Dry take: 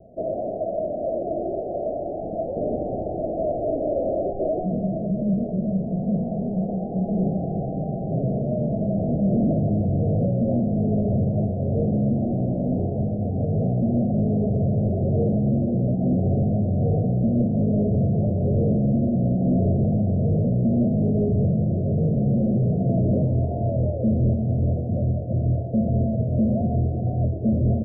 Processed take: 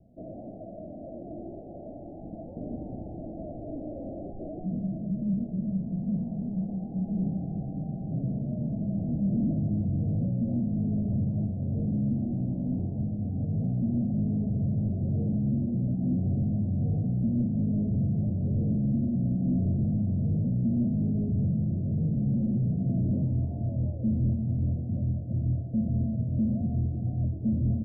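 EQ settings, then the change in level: band shelf 530 Hz -12.5 dB 1.2 oct; -5.5 dB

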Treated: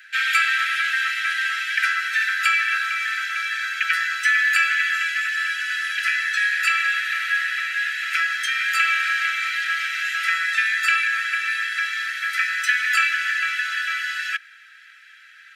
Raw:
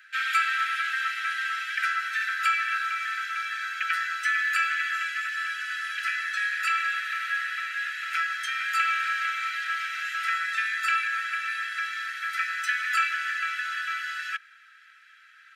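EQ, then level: steep high-pass 1500 Hz 36 dB/oct; +8.0 dB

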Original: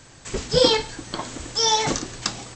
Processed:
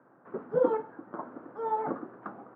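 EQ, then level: HPF 190 Hz 24 dB/oct; Chebyshev low-pass 1400 Hz, order 4; -6.5 dB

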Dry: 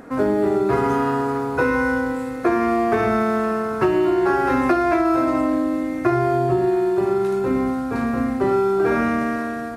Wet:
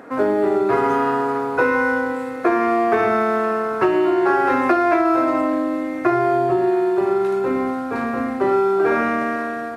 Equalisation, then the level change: HPF 70 Hz; tone controls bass -11 dB, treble -7 dB; +3.0 dB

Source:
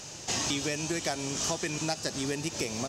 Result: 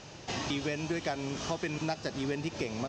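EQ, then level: air absorption 200 m; high shelf 12000 Hz +3 dB; 0.0 dB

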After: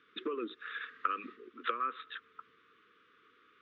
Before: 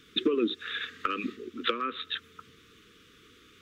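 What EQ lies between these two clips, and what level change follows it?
band-pass 1100 Hz, Q 1.3; air absorption 130 m; 0.0 dB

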